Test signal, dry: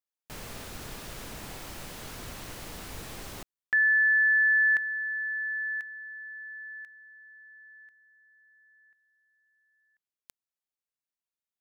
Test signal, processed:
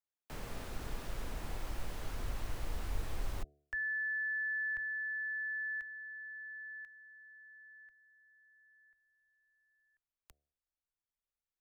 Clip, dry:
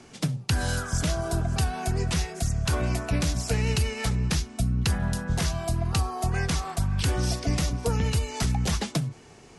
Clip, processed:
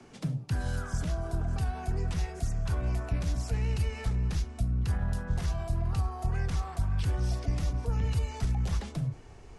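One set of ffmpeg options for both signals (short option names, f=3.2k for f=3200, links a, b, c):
-filter_complex "[0:a]highshelf=f=2.2k:g=-8.5,bandreject=f=72.47:t=h:w=4,bandreject=f=144.94:t=h:w=4,bandreject=f=217.41:t=h:w=4,bandreject=f=289.88:t=h:w=4,bandreject=f=362.35:t=h:w=4,bandreject=f=434.82:t=h:w=4,bandreject=f=507.29:t=h:w=4,bandreject=f=579.76:t=h:w=4,bandreject=f=652.23:t=h:w=4,bandreject=f=724.7:t=h:w=4,acrossover=split=190[a][b];[b]acompressor=threshold=-34dB:ratio=5:attack=0.16:release=54:knee=2.83:detection=peak[c];[a][c]amix=inputs=2:normalize=0,asubboost=boost=7:cutoff=70,acrossover=split=140|990[d][e][f];[d]acompressor=threshold=-27dB:ratio=6:release=245[g];[g][e][f]amix=inputs=3:normalize=0,volume=-1.5dB"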